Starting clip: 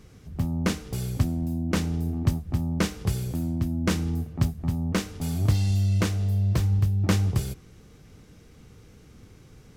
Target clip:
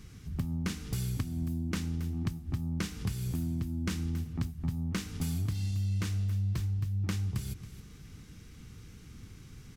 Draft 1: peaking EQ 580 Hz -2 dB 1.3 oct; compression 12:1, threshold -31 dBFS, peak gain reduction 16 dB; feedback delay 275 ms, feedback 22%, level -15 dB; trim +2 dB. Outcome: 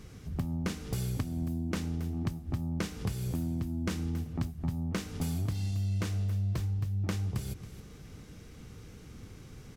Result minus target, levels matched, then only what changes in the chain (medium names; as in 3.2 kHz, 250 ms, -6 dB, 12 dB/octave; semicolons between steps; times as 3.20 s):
500 Hz band +5.5 dB
change: peaking EQ 580 Hz -13 dB 1.3 oct